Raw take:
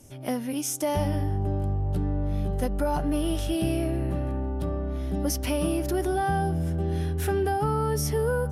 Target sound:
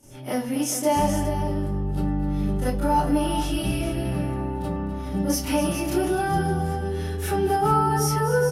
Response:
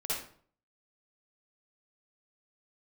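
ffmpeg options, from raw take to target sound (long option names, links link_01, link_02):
-filter_complex "[0:a]aecho=1:1:252|415:0.237|0.316[link_01];[1:a]atrim=start_sample=2205,asetrate=88200,aresample=44100[link_02];[link_01][link_02]afir=irnorm=-1:irlink=0,volume=5.5dB"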